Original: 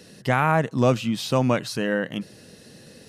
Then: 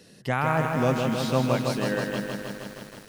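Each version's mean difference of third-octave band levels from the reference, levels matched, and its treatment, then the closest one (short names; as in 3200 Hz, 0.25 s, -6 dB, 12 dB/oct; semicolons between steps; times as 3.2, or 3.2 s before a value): 8.5 dB: lo-fi delay 0.158 s, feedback 80%, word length 7-bit, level -4.5 dB; gain -5 dB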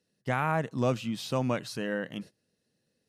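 5.5 dB: gate -36 dBFS, range -22 dB; gain -8 dB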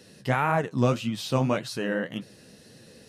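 1.0 dB: flange 1.8 Hz, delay 7 ms, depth 9.6 ms, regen +42%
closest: third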